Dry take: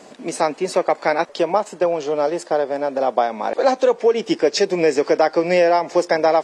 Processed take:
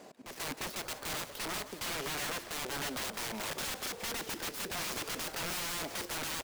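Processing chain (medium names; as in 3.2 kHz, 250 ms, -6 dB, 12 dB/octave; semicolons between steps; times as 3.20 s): dead-time distortion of 0.073 ms; peak limiter -9.5 dBFS, peak gain reduction 5.5 dB; integer overflow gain 23 dB; slow attack 159 ms; on a send: frequency-shifting echo 172 ms, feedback 61%, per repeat -60 Hz, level -14 dB; on the sum: trim -9 dB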